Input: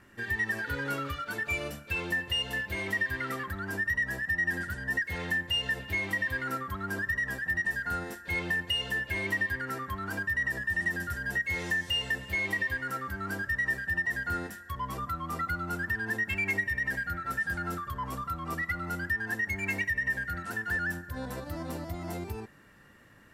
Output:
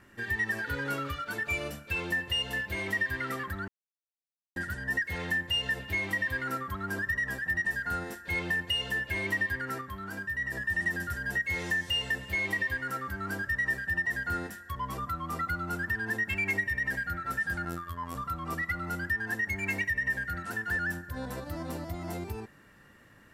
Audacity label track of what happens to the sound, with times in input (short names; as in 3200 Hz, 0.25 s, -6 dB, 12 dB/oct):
3.680000	4.560000	mute
9.810000	10.520000	resonator 64 Hz, decay 0.28 s
17.650000	18.150000	robotiser 85.6 Hz